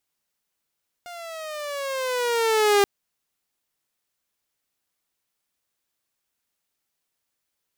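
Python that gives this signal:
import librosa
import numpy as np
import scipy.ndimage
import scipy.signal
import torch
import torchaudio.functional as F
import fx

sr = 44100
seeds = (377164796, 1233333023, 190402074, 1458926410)

y = fx.riser_tone(sr, length_s=1.78, level_db=-12, wave='saw', hz=710.0, rise_st=-10.0, swell_db=22.0)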